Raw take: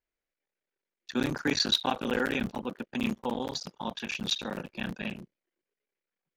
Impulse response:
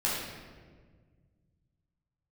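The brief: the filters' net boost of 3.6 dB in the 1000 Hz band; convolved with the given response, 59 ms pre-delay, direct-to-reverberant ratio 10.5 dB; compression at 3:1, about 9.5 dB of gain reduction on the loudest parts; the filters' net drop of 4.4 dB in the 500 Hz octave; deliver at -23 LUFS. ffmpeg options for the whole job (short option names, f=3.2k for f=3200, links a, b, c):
-filter_complex "[0:a]equalizer=f=500:t=o:g=-7,equalizer=f=1k:t=o:g=7,acompressor=threshold=-34dB:ratio=3,asplit=2[a][b];[1:a]atrim=start_sample=2205,adelay=59[c];[b][c]afir=irnorm=-1:irlink=0,volume=-19.5dB[d];[a][d]amix=inputs=2:normalize=0,volume=14dB"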